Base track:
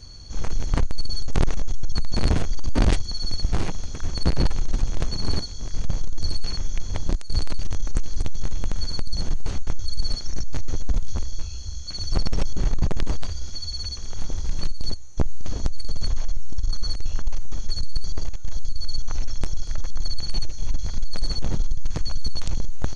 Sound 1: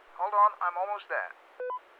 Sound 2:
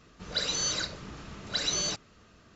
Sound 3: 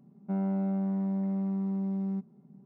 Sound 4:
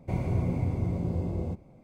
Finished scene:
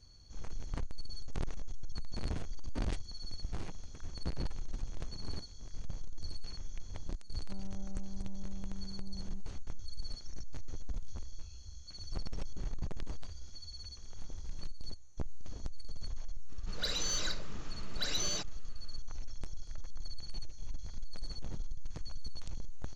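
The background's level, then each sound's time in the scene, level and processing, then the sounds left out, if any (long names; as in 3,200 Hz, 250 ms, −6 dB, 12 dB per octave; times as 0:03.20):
base track −16.5 dB
0:07.20: mix in 3 −18 dB
0:16.47: mix in 2 −5 dB, fades 0.05 s + soft clipping −20.5 dBFS
not used: 1, 4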